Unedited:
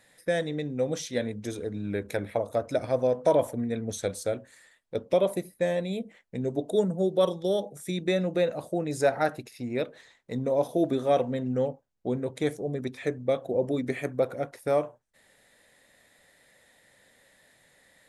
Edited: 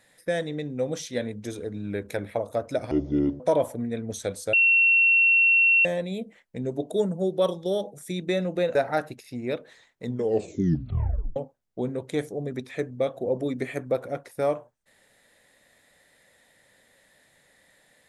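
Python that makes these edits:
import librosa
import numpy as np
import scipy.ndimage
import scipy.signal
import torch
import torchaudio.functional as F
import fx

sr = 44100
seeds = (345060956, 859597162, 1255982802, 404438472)

y = fx.edit(x, sr, fx.speed_span(start_s=2.91, length_s=0.28, speed=0.57),
    fx.bleep(start_s=4.32, length_s=1.32, hz=2720.0, db=-15.5),
    fx.cut(start_s=8.54, length_s=0.49),
    fx.tape_stop(start_s=10.33, length_s=1.31), tone=tone)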